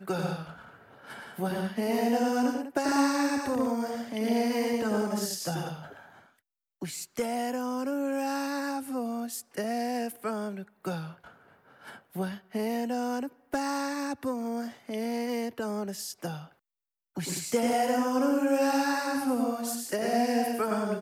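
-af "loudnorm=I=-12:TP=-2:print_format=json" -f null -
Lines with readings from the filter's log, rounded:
"input_i" : "-29.8",
"input_tp" : "-13.7",
"input_lra" : "6.8",
"input_thresh" : "-40.3",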